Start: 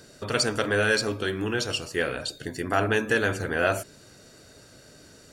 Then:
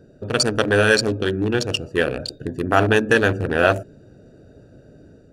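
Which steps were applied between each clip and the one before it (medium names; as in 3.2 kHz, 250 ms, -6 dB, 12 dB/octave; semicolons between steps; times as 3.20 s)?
local Wiener filter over 41 samples; band-stop 2.1 kHz, Q 7.5; level rider gain up to 3 dB; trim +5.5 dB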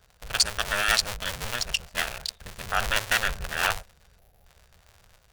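cycle switcher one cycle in 2, inverted; amplifier tone stack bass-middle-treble 10-0-10; time-frequency box 4.19–4.45 s, 850–10000 Hz -11 dB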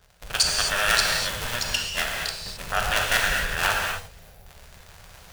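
gated-style reverb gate 290 ms flat, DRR -0.5 dB; reverse; upward compressor, threshold -37 dBFS; reverse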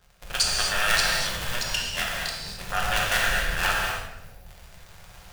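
simulated room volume 340 m³, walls mixed, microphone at 0.89 m; trim -3 dB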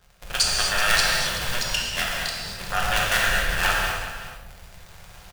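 delay 379 ms -13 dB; trim +2 dB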